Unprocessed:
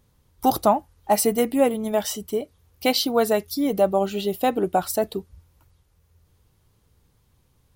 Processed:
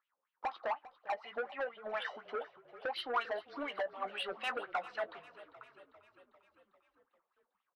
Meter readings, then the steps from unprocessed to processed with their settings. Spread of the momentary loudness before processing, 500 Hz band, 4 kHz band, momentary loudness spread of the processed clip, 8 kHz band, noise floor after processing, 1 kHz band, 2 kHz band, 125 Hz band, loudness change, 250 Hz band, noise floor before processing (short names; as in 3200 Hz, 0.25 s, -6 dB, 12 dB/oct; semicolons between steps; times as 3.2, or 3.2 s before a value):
8 LU, -18.5 dB, -14.5 dB, 16 LU, -35.0 dB, under -85 dBFS, -14.5 dB, -5.0 dB, under -30 dB, -17.0 dB, -28.5 dB, -64 dBFS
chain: G.711 law mismatch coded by mu; gate with hold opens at -41 dBFS; Chebyshev band-pass 200–4300 Hz, order 3; wah 4.1 Hz 500–3000 Hz, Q 6.6; compressor 6:1, threshold -37 dBFS, peak gain reduction 18.5 dB; soft clip -40 dBFS, distortion -8 dB; bell 1300 Hz +14.5 dB 1.7 oct; doubler 17 ms -12 dB; on a send: frequency-shifting echo 0.398 s, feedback 60%, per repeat -32 Hz, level -17.5 dB; on the sum: gain +1.5 dB